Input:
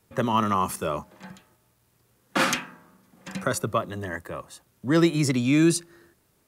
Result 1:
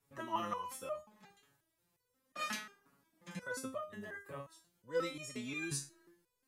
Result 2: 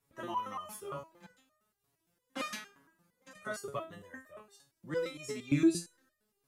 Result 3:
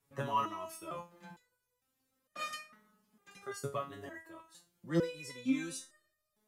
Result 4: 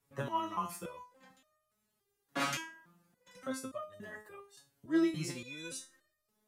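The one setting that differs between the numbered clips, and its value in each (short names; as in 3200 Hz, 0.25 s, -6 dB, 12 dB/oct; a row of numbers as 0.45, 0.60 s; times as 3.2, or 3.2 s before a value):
stepped resonator, rate: 5.6, 8.7, 2.2, 3.5 Hz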